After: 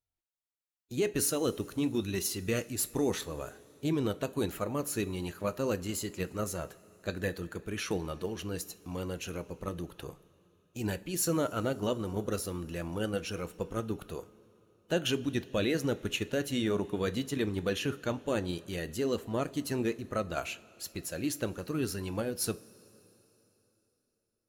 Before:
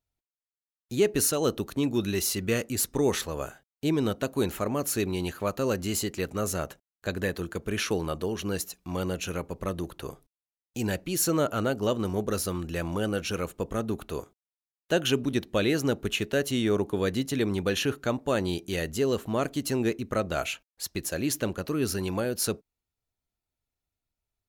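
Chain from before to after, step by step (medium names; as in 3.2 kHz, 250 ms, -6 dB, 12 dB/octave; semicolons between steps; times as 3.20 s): coarse spectral quantiser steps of 15 dB; in parallel at -2 dB: level held to a coarse grid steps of 14 dB; on the sum: two-slope reverb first 0.26 s, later 3.5 s, from -18 dB, DRR 12.5 dB; trim -8 dB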